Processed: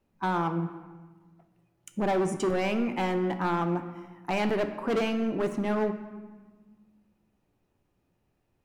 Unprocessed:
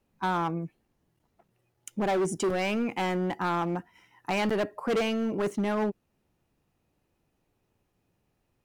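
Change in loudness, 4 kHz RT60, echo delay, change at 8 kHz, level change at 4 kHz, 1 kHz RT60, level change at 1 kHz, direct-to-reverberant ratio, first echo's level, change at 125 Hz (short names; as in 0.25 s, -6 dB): +0.5 dB, 0.90 s, none, -4.0 dB, -2.5 dB, 1.3 s, 0.0 dB, 7.5 dB, none, +1.5 dB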